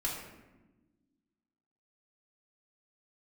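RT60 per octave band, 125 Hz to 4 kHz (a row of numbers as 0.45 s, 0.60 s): 1.7 s, 2.1 s, 1.3 s, 1.0 s, 0.95 s, 0.65 s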